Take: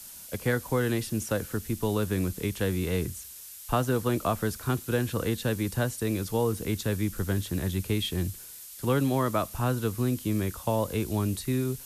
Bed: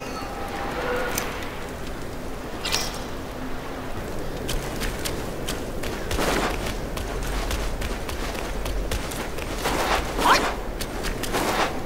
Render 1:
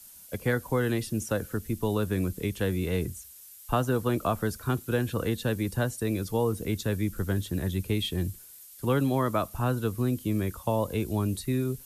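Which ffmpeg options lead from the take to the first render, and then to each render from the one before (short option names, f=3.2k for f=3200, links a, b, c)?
-af "afftdn=nr=8:nf=-45"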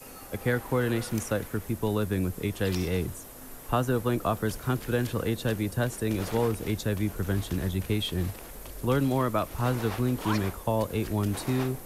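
-filter_complex "[1:a]volume=-15.5dB[a];[0:a][a]amix=inputs=2:normalize=0"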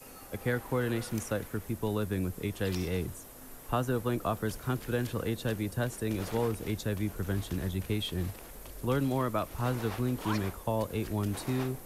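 -af "volume=-4dB"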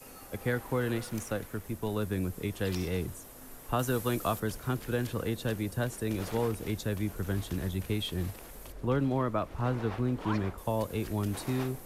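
-filter_complex "[0:a]asettb=1/sr,asplit=3[a][b][c];[a]atrim=end=0.984[d];[b]atrim=start=0.98:end=1.97,asetpts=PTS-STARTPTS,afade=t=in:d=0.004:c=qsin,afade=t=out:st=0.986:d=0.004:c=qsin,aeval=exprs='if(lt(val(0),0),0.708*val(0),val(0))':c=same[e];[c]atrim=start=1.966[f];[d][e]acrossfade=d=0.004:c1=hsin:c2=qsin[g];[g][f]acrossfade=d=0.004:c1=qsin:c2=hsin,asettb=1/sr,asplit=3[h][i][j];[h]atrim=end=3.794[k];[i]atrim=start=3.79:end=4.4,asetpts=PTS-STARTPTS,afade=t=in:d=0.004:c=qsin,afade=t=out:st=0.606:d=0.004:c=qsin,highshelf=f=2.2k:g=8.5[l];[j]atrim=start=4.396[m];[k][l]acrossfade=d=0.004:c1=hsin:c2=qsin[n];[n][m]acrossfade=d=0.004:c1=qsin:c2=hsin,asettb=1/sr,asplit=3[o][p][q];[o]atrim=end=8.724[r];[p]atrim=start=8.72:end=10.58,asetpts=PTS-STARTPTS,afade=t=in:d=0.004:c=qsin,afade=t=out:st=1.856:d=0.004:c=qsin,aemphasis=mode=reproduction:type=75fm[s];[q]atrim=start=10.576[t];[r][s]acrossfade=d=0.004:c1=hsin:c2=qsin[u];[u][t]acrossfade=d=0.004:c1=qsin:c2=hsin"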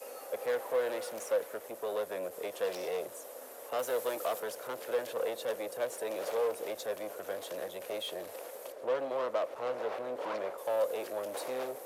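-af "asoftclip=type=tanh:threshold=-34dB,highpass=f=530:t=q:w=4.9"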